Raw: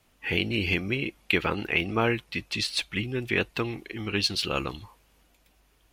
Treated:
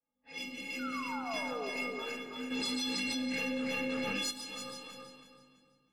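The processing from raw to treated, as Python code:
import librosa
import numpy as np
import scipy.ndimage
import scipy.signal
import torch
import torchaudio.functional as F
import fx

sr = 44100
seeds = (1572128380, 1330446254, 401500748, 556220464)

p1 = fx.lower_of_two(x, sr, delay_ms=6.4)
p2 = scipy.signal.sosfilt(scipy.signal.butter(2, 86.0, 'highpass', fs=sr, output='sos'), p1)
p3 = fx.high_shelf(p2, sr, hz=11000.0, db=6.0)
p4 = fx.env_lowpass(p3, sr, base_hz=930.0, full_db=-23.5)
p5 = fx.chorus_voices(p4, sr, voices=6, hz=0.39, base_ms=23, depth_ms=3.5, mix_pct=50)
p6 = fx.stiff_resonator(p5, sr, f0_hz=250.0, decay_s=0.64, stiffness=0.03)
p7 = fx.spec_paint(p6, sr, seeds[0], shape='fall', start_s=0.79, length_s=0.91, low_hz=380.0, high_hz=1500.0, level_db=-51.0)
p8 = p7 + fx.echo_feedback(p7, sr, ms=327, feedback_pct=30, wet_db=-4, dry=0)
p9 = fx.room_shoebox(p8, sr, seeds[1], volume_m3=2500.0, walls='mixed', distance_m=1.6)
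p10 = fx.env_flatten(p9, sr, amount_pct=100, at=(2.5, 4.3), fade=0.02)
y = p10 * librosa.db_to_amplitude(7.5)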